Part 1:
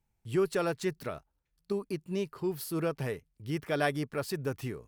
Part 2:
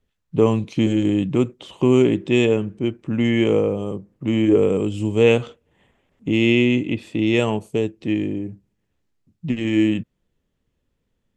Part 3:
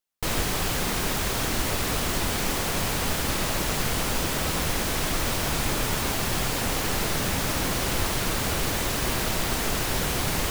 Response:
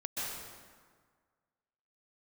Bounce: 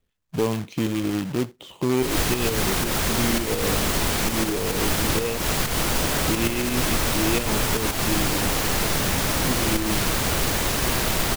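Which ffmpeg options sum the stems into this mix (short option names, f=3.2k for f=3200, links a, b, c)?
-filter_complex "[0:a]highpass=83,equalizer=f=120:t=o:w=1.7:g=4,adelay=2300,volume=-11.5dB,asplit=2[a][b];[b]volume=-10.5dB[c];[1:a]volume=-9.5dB[d];[2:a]adelay=1800,volume=0dB[e];[3:a]atrim=start_sample=2205[f];[c][f]afir=irnorm=-1:irlink=0[g];[a][d][e][g]amix=inputs=4:normalize=0,acontrast=73,acrusher=bits=2:mode=log:mix=0:aa=0.000001,alimiter=limit=-14.5dB:level=0:latency=1:release=207"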